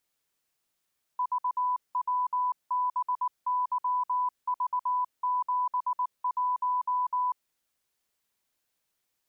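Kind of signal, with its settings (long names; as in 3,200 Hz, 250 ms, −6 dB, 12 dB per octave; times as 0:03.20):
Morse code "VWBYV71" 19 words per minute 996 Hz −24.5 dBFS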